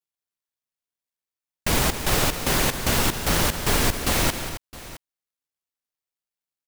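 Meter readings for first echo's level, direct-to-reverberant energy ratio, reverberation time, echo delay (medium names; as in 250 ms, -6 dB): -17.5 dB, no reverb, no reverb, 147 ms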